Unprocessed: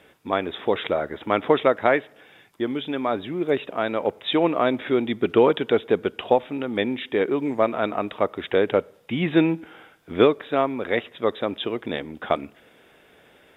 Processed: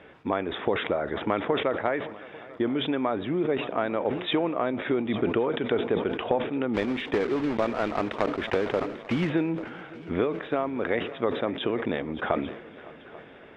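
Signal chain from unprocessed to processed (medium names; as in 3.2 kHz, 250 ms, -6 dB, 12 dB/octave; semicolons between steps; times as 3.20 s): 6.74–9.30 s: block-companded coder 3-bit; low-pass 2.4 kHz 12 dB/octave; compression 6:1, threshold -28 dBFS, peak gain reduction 16 dB; multi-head delay 281 ms, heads second and third, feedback 52%, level -20.5 dB; decay stretcher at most 77 dB/s; trim +4.5 dB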